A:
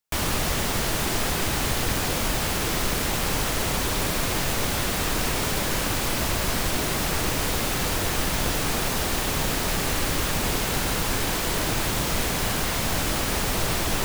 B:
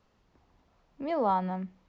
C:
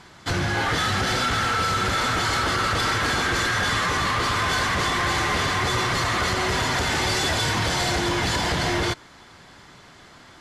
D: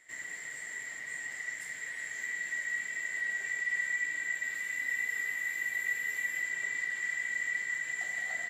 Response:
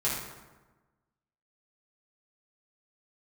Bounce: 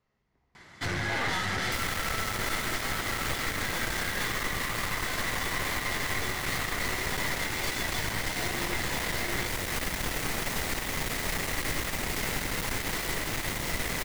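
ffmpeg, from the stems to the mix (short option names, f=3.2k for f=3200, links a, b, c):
-filter_complex "[0:a]adelay=1600,volume=-2.5dB[a];[1:a]volume=-12.5dB,asplit=2[b][c];[c]volume=-10dB[d];[2:a]adelay=550,volume=-6dB[e];[4:a]atrim=start_sample=2205[f];[d][f]afir=irnorm=-1:irlink=0[g];[a][b][e][g]amix=inputs=4:normalize=0,equalizer=f=2k:t=o:w=0.27:g=10.5,aeval=exprs='clip(val(0),-1,0.0224)':c=same,alimiter=limit=-18.5dB:level=0:latency=1:release=270"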